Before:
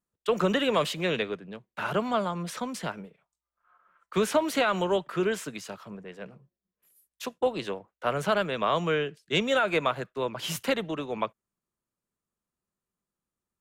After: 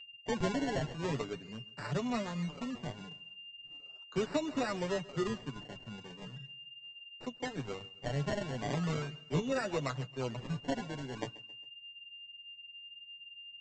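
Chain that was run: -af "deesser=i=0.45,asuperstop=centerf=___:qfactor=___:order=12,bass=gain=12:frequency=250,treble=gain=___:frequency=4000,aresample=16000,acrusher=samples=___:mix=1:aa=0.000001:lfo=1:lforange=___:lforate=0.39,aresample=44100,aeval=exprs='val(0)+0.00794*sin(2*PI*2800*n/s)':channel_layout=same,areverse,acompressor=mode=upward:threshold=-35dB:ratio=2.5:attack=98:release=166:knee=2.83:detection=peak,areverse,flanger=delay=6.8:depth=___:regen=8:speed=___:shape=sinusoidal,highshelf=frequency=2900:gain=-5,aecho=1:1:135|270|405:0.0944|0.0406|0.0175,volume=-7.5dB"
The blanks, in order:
4500, 6.5, 0, 9, 9, 1.5, 1.6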